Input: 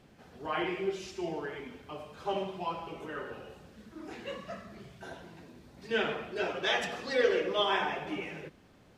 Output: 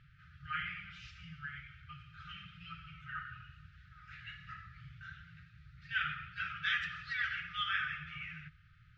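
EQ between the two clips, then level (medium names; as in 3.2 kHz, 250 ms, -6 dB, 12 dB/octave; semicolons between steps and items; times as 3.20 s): brick-wall FIR band-stop 160–1200 Hz; distance through air 190 m; treble shelf 3.7 kHz -11.5 dB; +3.5 dB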